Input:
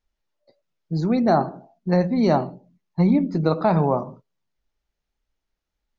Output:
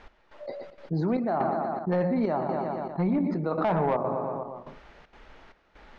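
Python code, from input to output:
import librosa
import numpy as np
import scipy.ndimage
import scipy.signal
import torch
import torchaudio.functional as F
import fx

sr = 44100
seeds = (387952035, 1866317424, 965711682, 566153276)

y = scipy.signal.sosfilt(scipy.signal.butter(2, 2000.0, 'lowpass', fs=sr, output='sos'), x)
y = fx.low_shelf(y, sr, hz=120.0, db=-6.0)
y = fx.echo_feedback(y, sr, ms=119, feedback_pct=50, wet_db=-14.5)
y = fx.step_gate(y, sr, bpm=193, pattern='x...xxxxx.xxxx', floor_db=-12.0, edge_ms=4.5)
y = fx.low_shelf(y, sr, hz=270.0, db=-8.5)
y = 10.0 ** (-17.0 / 20.0) * np.tanh(y / 10.0 ** (-17.0 / 20.0))
y = fx.env_flatten(y, sr, amount_pct=70)
y = F.gain(torch.from_numpy(y), -2.0).numpy()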